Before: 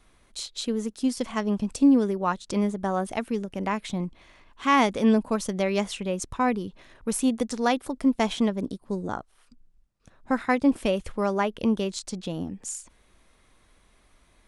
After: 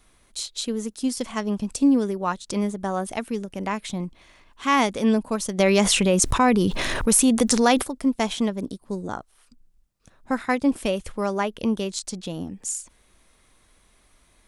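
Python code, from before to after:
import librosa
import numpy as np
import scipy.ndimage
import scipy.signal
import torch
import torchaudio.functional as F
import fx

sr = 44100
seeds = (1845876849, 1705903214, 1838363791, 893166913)

y = fx.high_shelf(x, sr, hz=5300.0, db=8.0)
y = fx.env_flatten(y, sr, amount_pct=70, at=(5.58, 7.82), fade=0.02)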